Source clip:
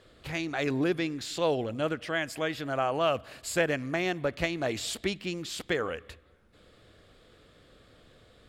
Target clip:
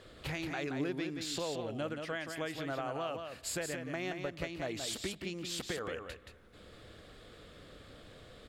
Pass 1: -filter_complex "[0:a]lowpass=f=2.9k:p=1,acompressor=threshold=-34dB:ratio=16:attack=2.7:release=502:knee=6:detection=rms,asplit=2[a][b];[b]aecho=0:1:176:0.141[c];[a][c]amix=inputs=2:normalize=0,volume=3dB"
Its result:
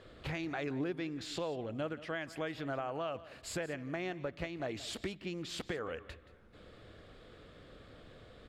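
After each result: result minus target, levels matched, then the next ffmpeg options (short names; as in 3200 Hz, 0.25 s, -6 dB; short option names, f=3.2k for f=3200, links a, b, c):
echo-to-direct -11 dB; 4000 Hz band -2.5 dB
-filter_complex "[0:a]lowpass=f=2.9k:p=1,acompressor=threshold=-34dB:ratio=16:attack=2.7:release=502:knee=6:detection=rms,asplit=2[a][b];[b]aecho=0:1:176:0.501[c];[a][c]amix=inputs=2:normalize=0,volume=3dB"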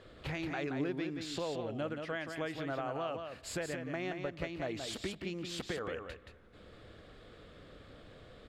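4000 Hz band -2.5 dB
-filter_complex "[0:a]acompressor=threshold=-34dB:ratio=16:attack=2.7:release=502:knee=6:detection=rms,asplit=2[a][b];[b]aecho=0:1:176:0.501[c];[a][c]amix=inputs=2:normalize=0,volume=3dB"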